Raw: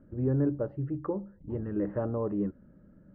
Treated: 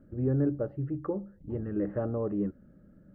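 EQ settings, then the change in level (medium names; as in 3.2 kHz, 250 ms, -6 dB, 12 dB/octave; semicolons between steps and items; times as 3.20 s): band-stop 970 Hz, Q 5.3; 0.0 dB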